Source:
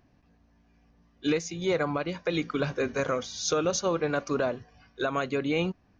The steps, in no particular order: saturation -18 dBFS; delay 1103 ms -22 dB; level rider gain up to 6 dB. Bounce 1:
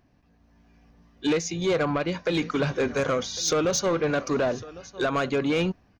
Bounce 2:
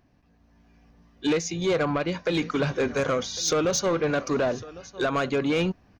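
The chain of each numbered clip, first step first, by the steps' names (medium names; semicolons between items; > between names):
level rider > delay > saturation; delay > level rider > saturation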